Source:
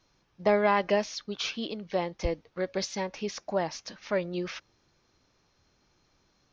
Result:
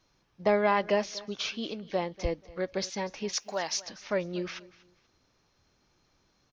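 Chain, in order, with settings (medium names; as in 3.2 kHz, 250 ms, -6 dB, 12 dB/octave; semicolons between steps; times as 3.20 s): 3.33–3.82 s: tilt EQ +4.5 dB/octave; on a send: feedback delay 241 ms, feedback 27%, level -20 dB; on the sum: trim -1 dB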